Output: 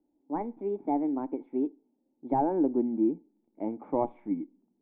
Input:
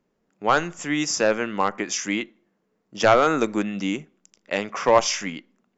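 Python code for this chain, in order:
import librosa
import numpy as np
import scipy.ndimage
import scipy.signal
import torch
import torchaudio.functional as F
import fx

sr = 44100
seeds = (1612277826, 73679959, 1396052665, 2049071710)

y = fx.speed_glide(x, sr, from_pct=141, to_pct=99)
y = fx.formant_cascade(y, sr, vowel='u')
y = y * 10.0 ** (5.5 / 20.0)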